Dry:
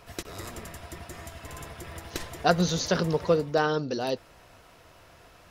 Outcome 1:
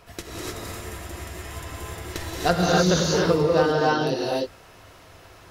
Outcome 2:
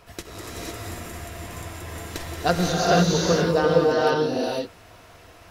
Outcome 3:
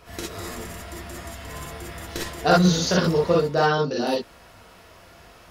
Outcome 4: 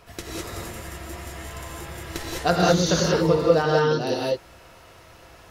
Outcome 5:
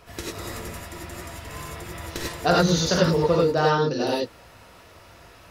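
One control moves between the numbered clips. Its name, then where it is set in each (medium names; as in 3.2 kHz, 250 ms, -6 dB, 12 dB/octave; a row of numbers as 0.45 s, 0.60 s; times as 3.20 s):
gated-style reverb, gate: 330 ms, 530 ms, 80 ms, 230 ms, 120 ms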